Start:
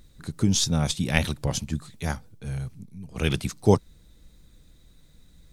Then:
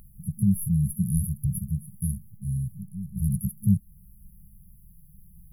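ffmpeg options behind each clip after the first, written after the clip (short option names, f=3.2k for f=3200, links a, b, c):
-filter_complex "[0:a]afftfilt=real='re*(1-between(b*sr/4096,210,10000))':imag='im*(1-between(b*sr/4096,210,10000))':win_size=4096:overlap=0.75,lowshelf=f=240:g=-11.5,asplit=2[a][b];[b]acompressor=threshold=-41dB:ratio=6,volume=-1dB[c];[a][c]amix=inputs=2:normalize=0,volume=8dB"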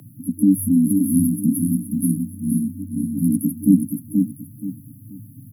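-filter_complex "[0:a]afreqshift=94,asplit=2[a][b];[b]aecho=0:1:478|956|1434|1912:0.596|0.179|0.0536|0.0161[c];[a][c]amix=inputs=2:normalize=0,volume=6.5dB"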